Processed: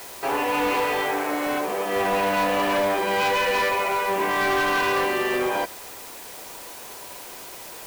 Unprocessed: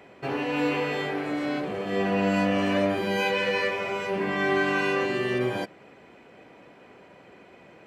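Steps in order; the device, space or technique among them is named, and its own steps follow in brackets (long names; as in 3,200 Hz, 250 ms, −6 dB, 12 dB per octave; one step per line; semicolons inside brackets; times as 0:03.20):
drive-through speaker (band-pass filter 380–3,700 Hz; parametric band 950 Hz +8 dB 0.55 octaves; hard clipping −24.5 dBFS, distortion −11 dB; white noise bed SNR 16 dB)
level +5.5 dB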